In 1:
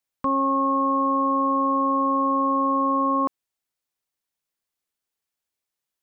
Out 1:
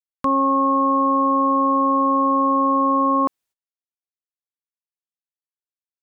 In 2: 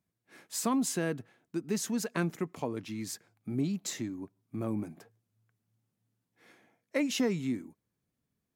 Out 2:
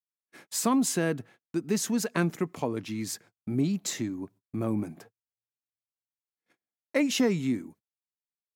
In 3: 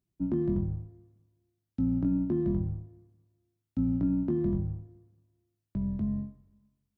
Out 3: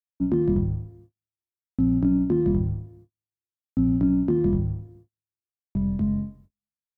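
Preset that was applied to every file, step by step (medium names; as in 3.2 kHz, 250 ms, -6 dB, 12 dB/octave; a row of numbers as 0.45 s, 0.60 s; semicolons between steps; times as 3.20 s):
gate -56 dBFS, range -40 dB; peak normalisation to -12 dBFS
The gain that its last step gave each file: +4.0 dB, +4.5 dB, +6.5 dB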